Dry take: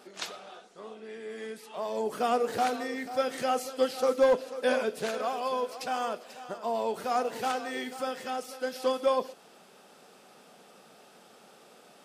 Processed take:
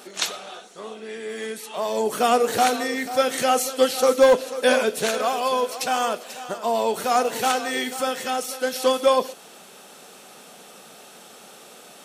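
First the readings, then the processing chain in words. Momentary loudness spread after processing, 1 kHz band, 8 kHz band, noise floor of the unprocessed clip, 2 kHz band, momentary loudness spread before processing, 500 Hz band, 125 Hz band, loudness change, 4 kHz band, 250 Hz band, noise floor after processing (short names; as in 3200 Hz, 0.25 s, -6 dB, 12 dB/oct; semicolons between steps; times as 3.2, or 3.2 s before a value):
14 LU, +8.0 dB, +15.0 dB, -56 dBFS, +10.0 dB, 14 LU, +7.5 dB, n/a, +8.5 dB, +12.0 dB, +7.5 dB, -46 dBFS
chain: high shelf 3100 Hz +9 dB; notch 4900 Hz, Q 9.8; gain +7.5 dB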